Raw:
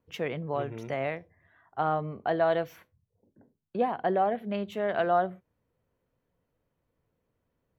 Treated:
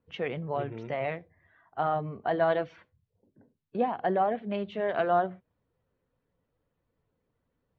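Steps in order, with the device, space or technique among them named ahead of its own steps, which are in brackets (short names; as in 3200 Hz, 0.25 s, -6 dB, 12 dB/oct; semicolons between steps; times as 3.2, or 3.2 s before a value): clip after many re-uploads (LPF 4400 Hz 24 dB/oct; bin magnitudes rounded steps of 15 dB)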